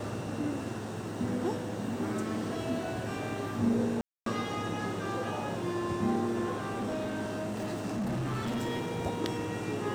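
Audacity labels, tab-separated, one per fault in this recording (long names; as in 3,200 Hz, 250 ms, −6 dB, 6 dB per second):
4.010000	4.260000	drop-out 253 ms
6.500000	9.010000	clipping −29.5 dBFS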